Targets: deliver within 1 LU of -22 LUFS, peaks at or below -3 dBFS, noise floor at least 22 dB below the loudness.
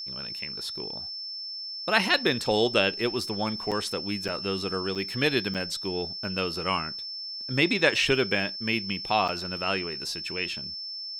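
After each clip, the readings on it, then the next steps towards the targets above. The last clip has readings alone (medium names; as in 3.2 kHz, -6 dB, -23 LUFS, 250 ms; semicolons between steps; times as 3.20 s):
dropouts 5; longest dropout 7.0 ms; steady tone 5.3 kHz; tone level -34 dBFS; loudness -27.5 LUFS; peak level -5.5 dBFS; loudness target -22.0 LUFS
-> interpolate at 3.71/4.28/4.95/5.54/9.28 s, 7 ms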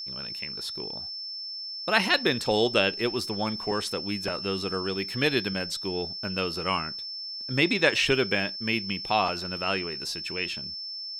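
dropouts 0; steady tone 5.3 kHz; tone level -34 dBFS
-> band-stop 5.3 kHz, Q 30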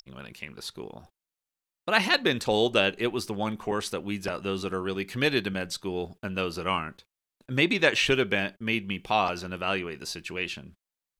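steady tone not found; loudness -27.5 LUFS; peak level -6.0 dBFS; loudness target -22.0 LUFS
-> trim +5.5 dB; peak limiter -3 dBFS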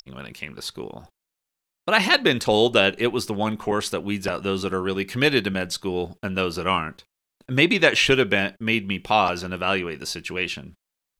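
loudness -22.0 LUFS; peak level -3.0 dBFS; noise floor -85 dBFS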